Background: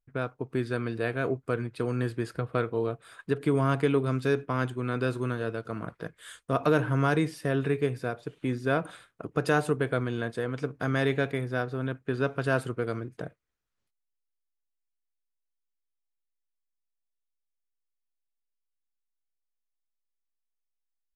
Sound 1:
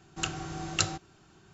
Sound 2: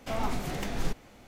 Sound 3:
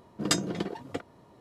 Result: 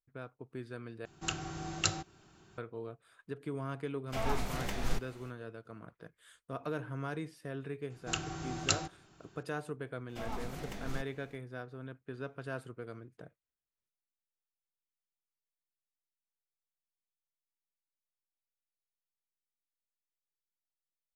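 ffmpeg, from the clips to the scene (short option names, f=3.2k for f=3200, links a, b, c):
-filter_complex "[1:a]asplit=2[a][b];[2:a]asplit=2[c][d];[0:a]volume=-14dB[e];[a]acompressor=mode=upward:threshold=-53dB:ratio=2.5:attack=3.2:release=140:knee=2.83:detection=peak[f];[c]equalizer=f=260:t=o:w=1.8:g=-5[g];[e]asplit=2[h][i];[h]atrim=end=1.054[j];[f]atrim=end=1.53,asetpts=PTS-STARTPTS,volume=-3.5dB[k];[i]atrim=start=2.576[l];[g]atrim=end=1.27,asetpts=PTS-STARTPTS,volume=-2dB,afade=t=in:d=0.05,afade=t=out:st=1.22:d=0.05,adelay=4060[m];[b]atrim=end=1.53,asetpts=PTS-STARTPTS,volume=-3dB,afade=t=in:d=0.004:c=hsin,afade=t=out:st=1.526:d=0.004:c=hsin,adelay=7900[n];[d]atrim=end=1.27,asetpts=PTS-STARTPTS,volume=-9.5dB,afade=t=in:d=0.004:c=hsin,afade=t=out:st=1.266:d=0.004:c=hsin,adelay=10090[o];[j][k]acrossfade=d=0.004:c1=hsin:c2=hsin[p];[p][l]acrossfade=d=0.004:c1=hsin:c2=hsin[q];[q][m][n][o]amix=inputs=4:normalize=0"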